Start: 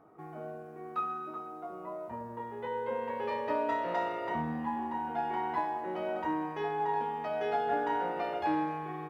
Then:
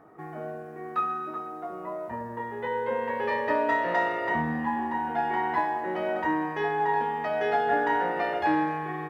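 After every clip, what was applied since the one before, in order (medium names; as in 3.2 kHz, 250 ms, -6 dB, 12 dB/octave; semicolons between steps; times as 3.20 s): peaking EQ 1.8 kHz +10.5 dB 0.23 oct; trim +5.5 dB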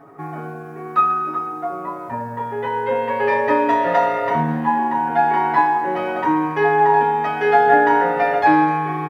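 comb 7.2 ms, depth 99%; trim +6 dB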